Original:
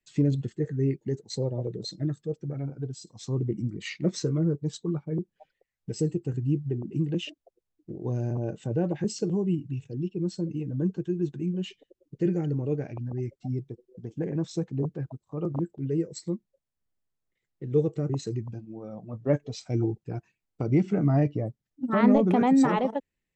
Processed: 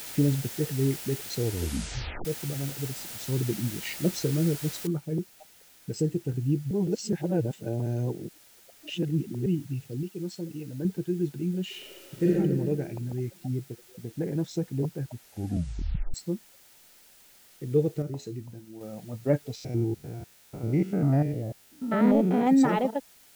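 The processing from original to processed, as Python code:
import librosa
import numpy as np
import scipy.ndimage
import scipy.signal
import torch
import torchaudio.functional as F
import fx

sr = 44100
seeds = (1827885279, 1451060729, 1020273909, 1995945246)

y = fx.noise_floor_step(x, sr, seeds[0], at_s=4.87, before_db=-40, after_db=-56, tilt_db=0.0)
y = fx.low_shelf(y, sr, hz=370.0, db=-8.0, at=(10.03, 10.85))
y = fx.reverb_throw(y, sr, start_s=11.65, length_s=0.65, rt60_s=1.5, drr_db=-5.0)
y = fx.comb_fb(y, sr, f0_hz=84.0, decay_s=0.32, harmonics='all', damping=0.0, mix_pct=60, at=(18.02, 18.81))
y = fx.spec_steps(y, sr, hold_ms=100, at=(19.55, 22.47))
y = fx.edit(y, sr, fx.tape_stop(start_s=1.35, length_s=0.9),
    fx.reverse_span(start_s=6.71, length_s=2.75),
    fx.tape_stop(start_s=15.07, length_s=1.07), tone=tone)
y = fx.notch(y, sr, hz=1100.0, q=6.3)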